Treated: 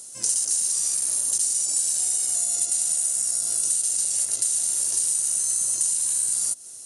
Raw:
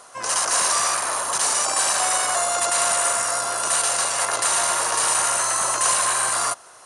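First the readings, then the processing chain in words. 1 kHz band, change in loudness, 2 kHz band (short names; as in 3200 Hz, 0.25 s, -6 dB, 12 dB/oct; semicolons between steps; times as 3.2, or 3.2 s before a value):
under -30 dB, -1.5 dB, under -20 dB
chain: EQ curve 270 Hz 0 dB, 1100 Hz -25 dB, 7700 Hz +11 dB; compressor 12:1, threshold -20 dBFS, peak gain reduction 13 dB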